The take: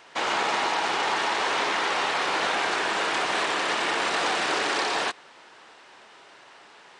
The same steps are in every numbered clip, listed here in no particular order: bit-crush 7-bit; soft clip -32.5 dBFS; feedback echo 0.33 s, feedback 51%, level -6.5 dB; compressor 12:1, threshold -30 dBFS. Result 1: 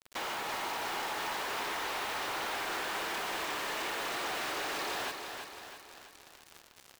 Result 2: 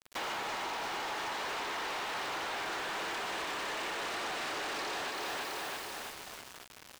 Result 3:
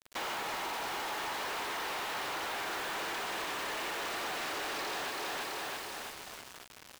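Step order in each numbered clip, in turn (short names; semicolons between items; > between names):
compressor > bit-crush > soft clip > feedback echo; feedback echo > bit-crush > compressor > soft clip; feedback echo > compressor > bit-crush > soft clip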